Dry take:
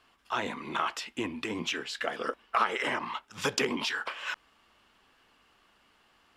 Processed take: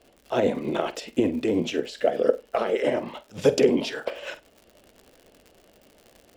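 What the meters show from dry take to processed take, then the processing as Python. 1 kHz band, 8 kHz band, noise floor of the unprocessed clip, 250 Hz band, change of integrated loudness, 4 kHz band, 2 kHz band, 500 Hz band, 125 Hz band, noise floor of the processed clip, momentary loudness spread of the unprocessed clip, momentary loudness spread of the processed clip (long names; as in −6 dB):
−1.5 dB, −0.5 dB, −66 dBFS, +11.5 dB, +7.0 dB, −1.0 dB, −3.5 dB, +14.0 dB, +10.0 dB, −59 dBFS, 8 LU, 12 LU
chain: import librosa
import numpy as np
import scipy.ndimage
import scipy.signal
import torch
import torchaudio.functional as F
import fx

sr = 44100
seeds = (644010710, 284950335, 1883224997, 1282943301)

p1 = fx.low_shelf_res(x, sr, hz=790.0, db=10.5, q=3.0)
p2 = p1 + fx.room_flutter(p1, sr, wall_m=8.3, rt60_s=0.21, dry=0)
p3 = fx.dmg_crackle(p2, sr, seeds[0], per_s=110.0, level_db=-40.0)
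p4 = fx.tremolo_shape(p3, sr, shape='saw_up', hz=10.0, depth_pct=40)
y = fx.rider(p4, sr, range_db=3, speed_s=2.0)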